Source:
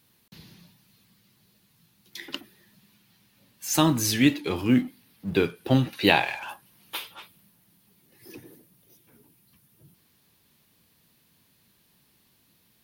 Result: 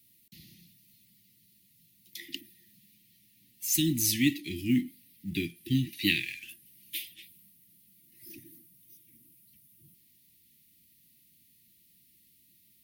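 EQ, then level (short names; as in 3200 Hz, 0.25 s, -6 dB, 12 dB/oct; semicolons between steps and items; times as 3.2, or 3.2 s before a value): Chebyshev band-stop 350–1900 Hz, order 5; high shelf 7500 Hz +10.5 dB; -5.0 dB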